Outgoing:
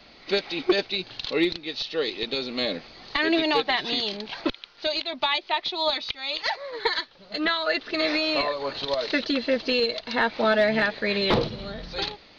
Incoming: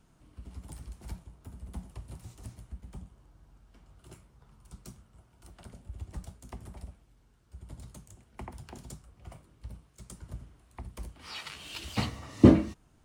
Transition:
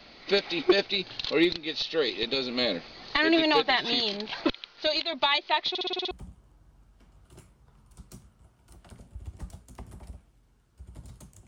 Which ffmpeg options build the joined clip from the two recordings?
-filter_complex "[0:a]apad=whole_dur=11.47,atrim=end=11.47,asplit=7[s0][s1][s2][s3][s4][s5][s6];[s0]atrim=end=5.752[s7];[s1]atrim=start=5.688:end=5.752[s8];[s2]atrim=start=5.688:end=5.752[s9];[s3]atrim=start=5.688:end=5.752[s10];[s4]atrim=start=5.688:end=5.752[s11];[s5]atrim=start=5.688:end=5.752[s12];[s6]atrim=start=5.688:end=5.752[s13];[1:a]atrim=start=2.848:end=8.21[s14];[s7][s8]acrossfade=d=0.004:c1=hsin:c2=hsin[s15];[s15][s9]acrossfade=d=0.004:c1=hsin:c2=hsin[s16];[s16][s10]acrossfade=d=0.004:c1=hsin:c2=hsin[s17];[s17][s11]acrossfade=d=0.004:c1=hsin:c2=hsin[s18];[s18][s12]acrossfade=d=0.004:c1=hsin:c2=hsin[s19];[s19][s13]acrossfade=d=0.004:c1=hsin:c2=hsin[s20];[s20][s14]acrossfade=d=0.004:c1=hsin:c2=hsin"

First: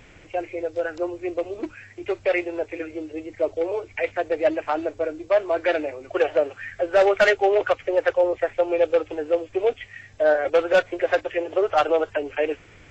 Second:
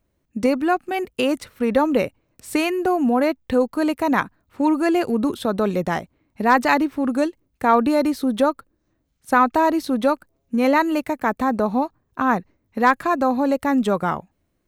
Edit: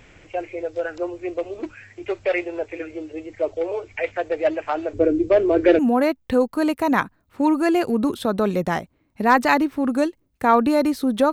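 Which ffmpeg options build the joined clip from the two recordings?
-filter_complex "[0:a]asettb=1/sr,asplit=3[s0][s1][s2];[s0]atrim=end=4.934[s3];[s1]atrim=start=4.93:end=5.79,asetpts=PTS-STARTPTS,afade=t=in:d=0.004:c=qsin,afade=t=out:st=0.856:d=0.004:c=qsin,lowshelf=f=520:t=q:w=1.5:g=13[s4];[s2]atrim=start=5.786[s5];[s3][s4]acrossfade=d=0.004:c1=hsin:c2=qsin[s6];[s6][s5]acrossfade=d=0.004:c1=qsin:c2=hsin,apad=whole_dur=11.32,atrim=end=11.32,atrim=end=5.792[s7];[1:a]atrim=start=2.988:end=8.52[s8];[s7][s8]acrossfade=d=0.004:c1=hsin:c2=hsin"

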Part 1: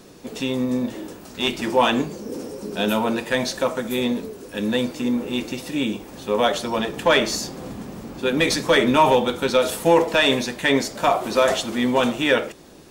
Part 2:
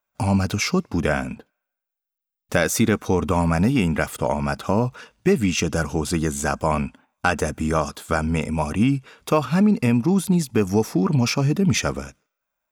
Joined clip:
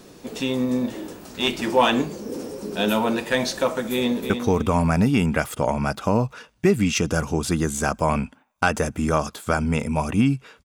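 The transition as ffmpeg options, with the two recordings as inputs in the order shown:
-filter_complex "[0:a]apad=whole_dur=10.64,atrim=end=10.64,atrim=end=4.302[s0];[1:a]atrim=start=2.918:end=9.26[s1];[s0][s1]acrossfade=d=0.004:c1=hsin:c2=hsin,asplit=2[s2][s3];[s3]afade=t=in:st=3.91:d=0.01,afade=t=out:st=4.3:d=0.01,aecho=0:1:310|620|930:0.421697|0.0843393|0.0168679[s4];[s2][s4]amix=inputs=2:normalize=0"

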